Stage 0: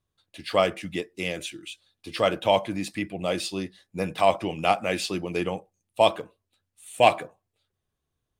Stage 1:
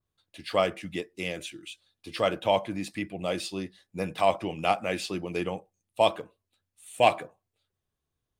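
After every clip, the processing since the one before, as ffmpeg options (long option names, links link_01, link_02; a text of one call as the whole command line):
ffmpeg -i in.wav -af "adynamicequalizer=threshold=0.0126:dfrequency=2700:dqfactor=0.7:tfrequency=2700:tqfactor=0.7:attack=5:release=100:ratio=0.375:range=2:mode=cutabove:tftype=highshelf,volume=-3dB" out.wav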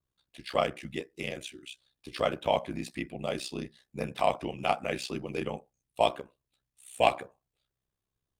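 ffmpeg -i in.wav -af "aeval=exprs='val(0)*sin(2*PI*32*n/s)':channel_layout=same" out.wav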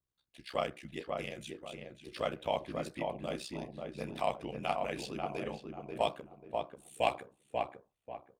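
ffmpeg -i in.wav -filter_complex "[0:a]asplit=2[link_01][link_02];[link_02]adelay=539,lowpass=frequency=1400:poles=1,volume=-3dB,asplit=2[link_03][link_04];[link_04]adelay=539,lowpass=frequency=1400:poles=1,volume=0.34,asplit=2[link_05][link_06];[link_06]adelay=539,lowpass=frequency=1400:poles=1,volume=0.34,asplit=2[link_07][link_08];[link_08]adelay=539,lowpass=frequency=1400:poles=1,volume=0.34[link_09];[link_01][link_03][link_05][link_07][link_09]amix=inputs=5:normalize=0,volume=-6.5dB" out.wav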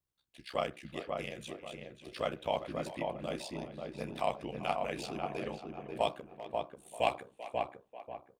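ffmpeg -i in.wav -filter_complex "[0:a]asplit=2[link_01][link_02];[link_02]adelay=390,highpass=300,lowpass=3400,asoftclip=type=hard:threshold=-22dB,volume=-14dB[link_03];[link_01][link_03]amix=inputs=2:normalize=0" out.wav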